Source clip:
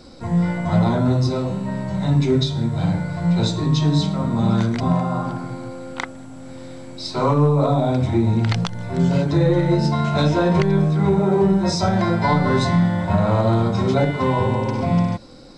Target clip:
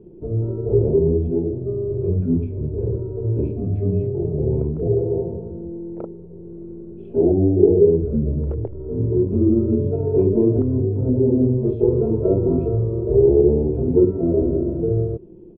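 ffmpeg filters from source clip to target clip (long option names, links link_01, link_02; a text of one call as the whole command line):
ffmpeg -i in.wav -af "lowpass=frequency=620:width_type=q:width=6.7,asetrate=28595,aresample=44100,atempo=1.54221,volume=-4.5dB" out.wav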